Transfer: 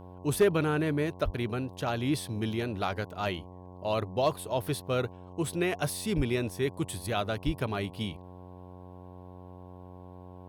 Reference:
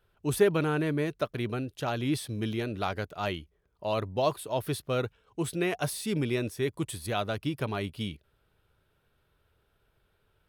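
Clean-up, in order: clip repair -16 dBFS; de-hum 90.9 Hz, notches 12; 1.24–1.36 HPF 140 Hz 24 dB/oct; 6.16–6.28 HPF 140 Hz 24 dB/oct; 7.45–7.57 HPF 140 Hz 24 dB/oct

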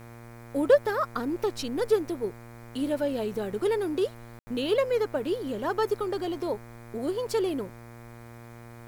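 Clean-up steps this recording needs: de-hum 117.6 Hz, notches 21; room tone fill 4.39–4.47; expander -38 dBFS, range -21 dB

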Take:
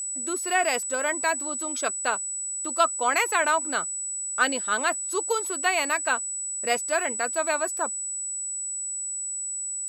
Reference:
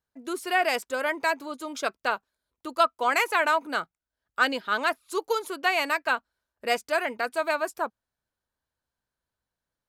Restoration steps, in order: notch 7900 Hz, Q 30

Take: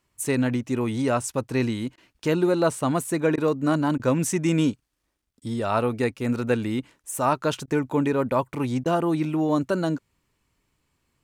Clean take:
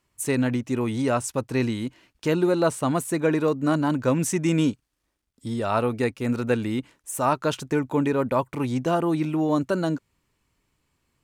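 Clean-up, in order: interpolate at 1.96/3.36/3.98/5.4/7.66/8.84, 15 ms

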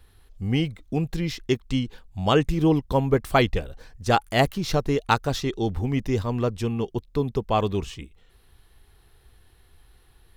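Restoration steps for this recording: clip repair -6.5 dBFS

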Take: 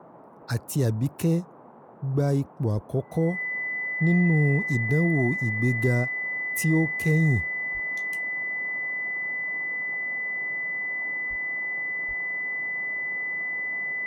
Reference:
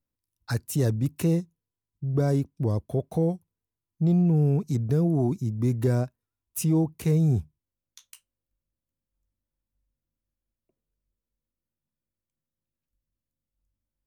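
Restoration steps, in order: notch 2000 Hz, Q 30; de-plosive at 2.74/7.73/11.29/12.07; noise print and reduce 30 dB; gain 0 dB, from 12.26 s -11 dB

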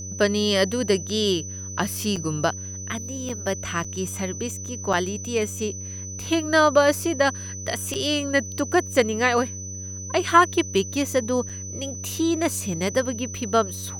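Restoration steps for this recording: de-hum 94.9 Hz, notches 6; notch 6000 Hz, Q 30; interpolate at 2.16/3.29/3.84/4.93/7.94/11.49, 5.6 ms

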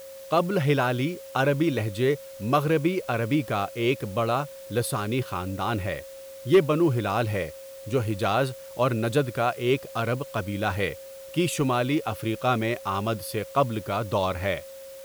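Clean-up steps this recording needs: clip repair -11 dBFS; notch 540 Hz, Q 30; noise print and reduce 28 dB

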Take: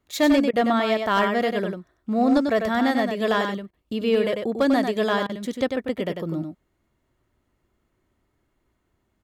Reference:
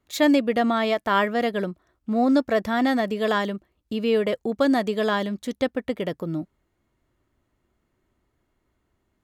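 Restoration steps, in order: clip repair -12.5 dBFS; interpolate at 0.51/3.71/5.27, 22 ms; inverse comb 96 ms -6 dB

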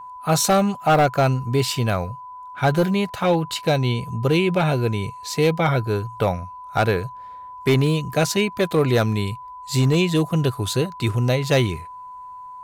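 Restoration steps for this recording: clip repair -11 dBFS; notch 1000 Hz, Q 30

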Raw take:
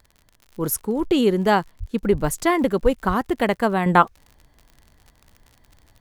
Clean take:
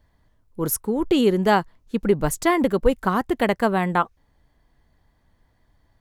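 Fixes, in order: de-click; de-plosive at 1.79/2.11/3.07; gain correction -6 dB, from 3.86

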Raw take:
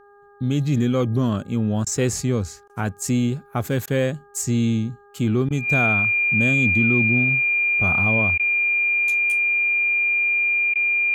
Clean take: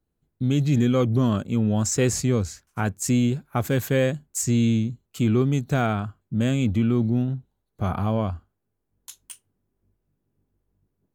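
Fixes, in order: de-hum 406.4 Hz, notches 4; notch 2400 Hz, Q 30; interpolate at 1.85/2.68/3.86/5.49/8.38/10.74, 14 ms

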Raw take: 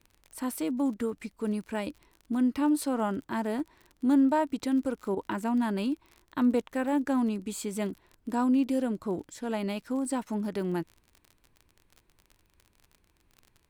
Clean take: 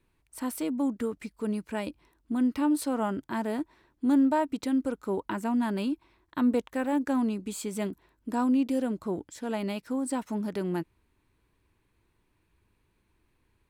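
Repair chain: de-click; interpolate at 5.15, 15 ms; expander -59 dBFS, range -21 dB

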